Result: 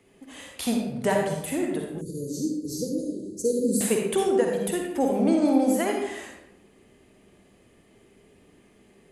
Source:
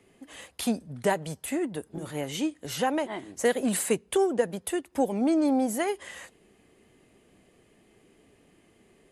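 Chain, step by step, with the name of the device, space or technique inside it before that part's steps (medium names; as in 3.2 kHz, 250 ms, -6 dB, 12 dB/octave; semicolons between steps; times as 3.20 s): bathroom (reverberation RT60 0.90 s, pre-delay 45 ms, DRR 0.5 dB); 2.01–3.81 s: Chebyshev band-stop 490–4400 Hz, order 5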